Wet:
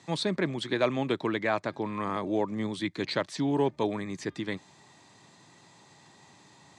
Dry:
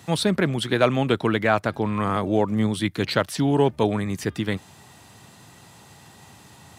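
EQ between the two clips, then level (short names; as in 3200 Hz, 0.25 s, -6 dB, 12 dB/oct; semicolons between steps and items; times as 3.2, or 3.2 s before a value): speaker cabinet 190–7100 Hz, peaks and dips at 220 Hz -5 dB, 470 Hz -5 dB, 730 Hz -5 dB, 1400 Hz -8 dB, 2900 Hz -8 dB, 5400 Hz -4 dB; -3.5 dB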